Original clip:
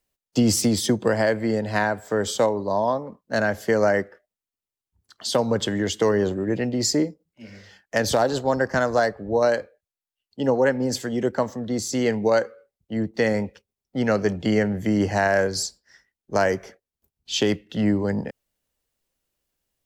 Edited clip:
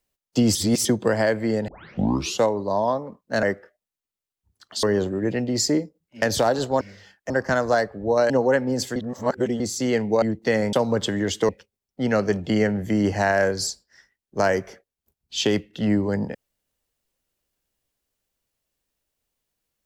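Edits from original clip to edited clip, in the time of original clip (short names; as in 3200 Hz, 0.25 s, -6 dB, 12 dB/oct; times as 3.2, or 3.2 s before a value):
0.55–0.85 reverse
1.68 tape start 0.75 s
3.43–3.92 cut
5.32–6.08 move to 13.45
7.47–7.96 move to 8.55
9.55–10.43 cut
11.09–11.73 reverse
12.35–12.94 cut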